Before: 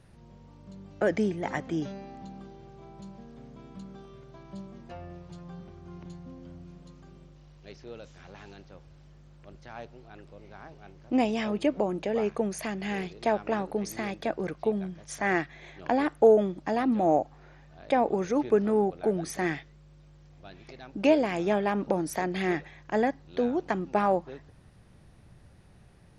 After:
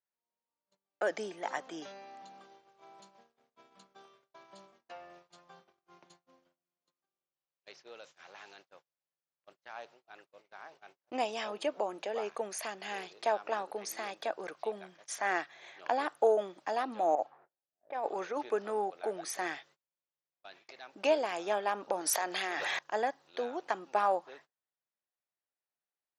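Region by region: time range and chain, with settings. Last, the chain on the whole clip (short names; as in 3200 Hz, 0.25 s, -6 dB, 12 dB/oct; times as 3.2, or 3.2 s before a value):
17.15–18.37 low-pass opened by the level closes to 370 Hz, open at -20 dBFS + negative-ratio compressor -26 dBFS, ratio -0.5 + low shelf 180 Hz -5 dB
22.01–22.79 low shelf 450 Hz -9.5 dB + fast leveller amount 100%
whole clip: HPF 700 Hz 12 dB/oct; gate -56 dBFS, range -33 dB; dynamic EQ 2100 Hz, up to -7 dB, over -51 dBFS, Q 2.4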